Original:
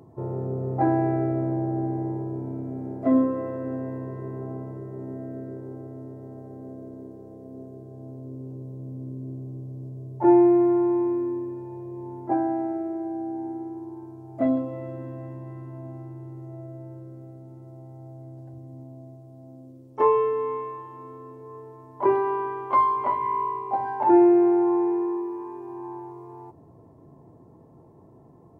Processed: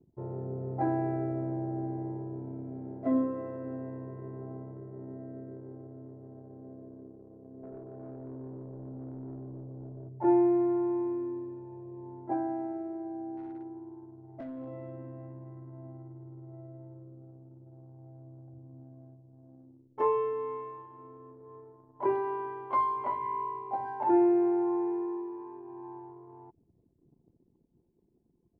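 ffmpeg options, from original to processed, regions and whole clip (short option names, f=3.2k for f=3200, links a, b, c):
-filter_complex "[0:a]asettb=1/sr,asplit=3[a][b][c];[a]atrim=end=7.634[d];[b]atrim=start=7.63:end=10.09,asetpts=PTS-STARTPTS,afade=t=in:d=0.004:c=qsin,afade=t=out:st=2.456:d=0.004:c=qsin,asuperstop=centerf=1500:order=12:qfactor=1.3,asplit=2[e][f];[f]highpass=f=720:p=1,volume=21dB,asoftclip=type=tanh:threshold=-26dB[g];[e][g]amix=inputs=2:normalize=0,lowpass=f=1.2k:p=1,volume=-6dB[h];[c]atrim=start=10.086[i];[d][h]acrossfade=d=0.004:c1=hsin:c2=qsin[j];[j][i]acrossfade=d=0.004:c1=qsin:c2=hsin,asettb=1/sr,asplit=3[k][l][m];[k]atrim=end=13.374[n];[l]atrim=start=13.37:end=14.68,asetpts=PTS-STARTPTS,afade=t=in:d=0.004:c=qsin,afade=t=out:st=1.306:d=0.004:c=qsin,acompressor=threshold=-28dB:ratio=16:attack=3.2:release=140:knee=1:detection=peak,asoftclip=type=hard:threshold=-28.5dB[o];[m]atrim=start=14.676[p];[n][o]acrossfade=d=0.004:c1=hsin:c2=qsin[q];[q][p]acrossfade=d=0.004:c1=qsin:c2=hsin,bandreject=f=1.2k:w=18,anlmdn=0.158,volume=-7.5dB"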